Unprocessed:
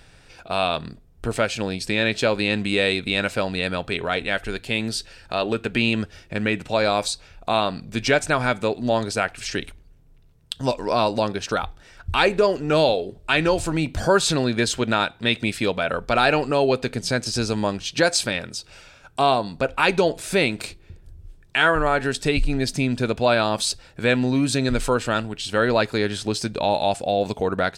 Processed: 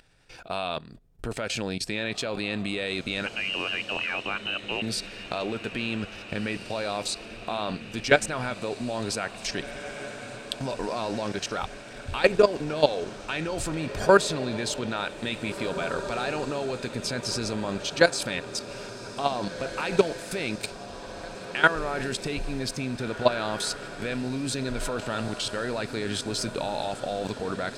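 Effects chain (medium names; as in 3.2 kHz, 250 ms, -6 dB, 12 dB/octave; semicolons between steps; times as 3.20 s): 3.26–4.82 s: frequency inversion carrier 3 kHz; level held to a coarse grid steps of 16 dB; peaking EQ 70 Hz -4.5 dB 0.81 oct; on a send: echo that smears into a reverb 1853 ms, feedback 65%, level -12.5 dB; on the sum: trim +2 dB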